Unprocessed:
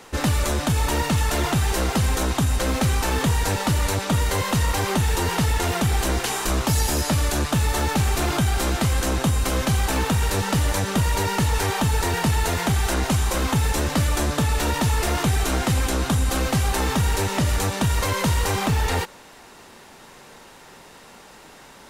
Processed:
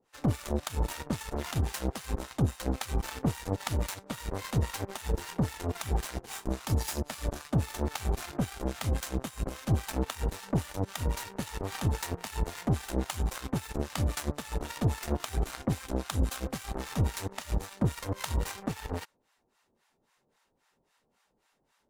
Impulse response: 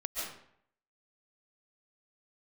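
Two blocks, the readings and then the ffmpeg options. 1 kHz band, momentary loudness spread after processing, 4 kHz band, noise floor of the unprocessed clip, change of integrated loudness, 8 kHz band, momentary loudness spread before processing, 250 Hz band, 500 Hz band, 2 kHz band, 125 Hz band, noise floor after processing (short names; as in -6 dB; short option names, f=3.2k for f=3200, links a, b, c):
-14.0 dB, 6 LU, -14.0 dB, -46 dBFS, -11.0 dB, -14.0 dB, 1 LU, -9.0 dB, -10.5 dB, -15.0 dB, -10.0 dB, -75 dBFS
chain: -filter_complex "[0:a]acrossover=split=720[a][b];[a]aeval=exprs='val(0)*(1-1/2+1/2*cos(2*PI*3.7*n/s))':c=same[c];[b]aeval=exprs='val(0)*(1-1/2-1/2*cos(2*PI*3.7*n/s))':c=same[d];[c][d]amix=inputs=2:normalize=0,asoftclip=type=tanh:threshold=-14dB,aeval=exprs='0.178*(cos(1*acos(clip(val(0)/0.178,-1,1)))-cos(1*PI/2))+0.0562*(cos(3*acos(clip(val(0)/0.178,-1,1)))-cos(3*PI/2))':c=same,volume=2dB"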